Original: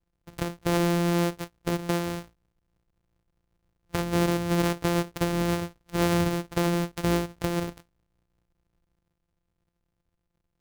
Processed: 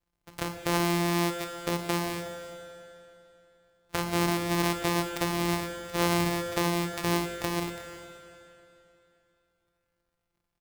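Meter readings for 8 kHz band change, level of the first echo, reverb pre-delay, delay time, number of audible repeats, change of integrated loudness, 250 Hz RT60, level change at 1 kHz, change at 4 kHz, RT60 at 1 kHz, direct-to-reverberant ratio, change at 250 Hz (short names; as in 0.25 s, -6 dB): +2.0 dB, -18.0 dB, 22 ms, 0.363 s, 1, -2.0 dB, 3.0 s, +1.5 dB, +2.0 dB, 2.9 s, 5.5 dB, -3.0 dB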